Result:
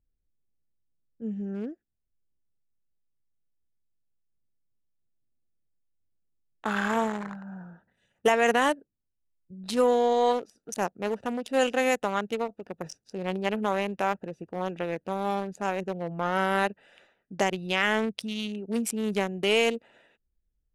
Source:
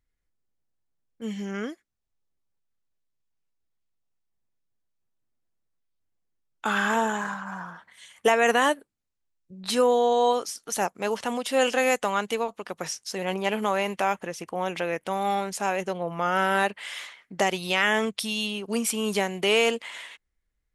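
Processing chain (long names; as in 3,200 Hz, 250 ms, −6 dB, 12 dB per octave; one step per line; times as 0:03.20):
adaptive Wiener filter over 41 samples
low-shelf EQ 250 Hz +3.5 dB
level −1.5 dB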